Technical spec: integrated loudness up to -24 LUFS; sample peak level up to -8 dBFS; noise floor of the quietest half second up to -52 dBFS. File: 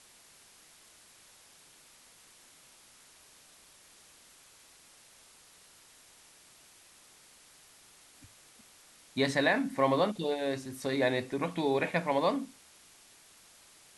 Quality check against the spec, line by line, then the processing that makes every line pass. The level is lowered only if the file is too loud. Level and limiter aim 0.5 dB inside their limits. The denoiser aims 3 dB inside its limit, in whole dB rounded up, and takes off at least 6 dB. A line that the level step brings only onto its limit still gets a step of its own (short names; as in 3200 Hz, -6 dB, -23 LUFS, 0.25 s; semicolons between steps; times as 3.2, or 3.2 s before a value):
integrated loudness -30.5 LUFS: OK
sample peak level -13.0 dBFS: OK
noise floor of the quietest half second -59 dBFS: OK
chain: none